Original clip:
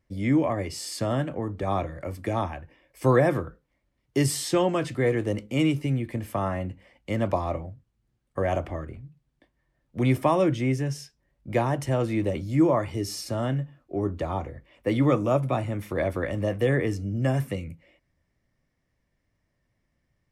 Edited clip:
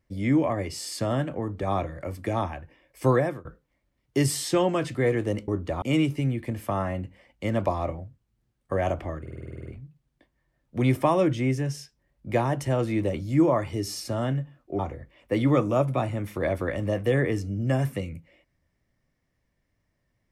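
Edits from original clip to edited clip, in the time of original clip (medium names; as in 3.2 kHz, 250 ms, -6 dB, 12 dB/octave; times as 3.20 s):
3.07–3.45 s: fade out, to -23 dB
8.87 s: stutter 0.05 s, 10 plays
14.00–14.34 s: move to 5.48 s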